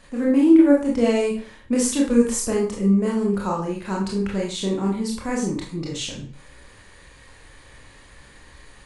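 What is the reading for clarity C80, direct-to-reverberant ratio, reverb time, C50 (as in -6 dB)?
9.5 dB, -3.0 dB, 0.40 s, 5.0 dB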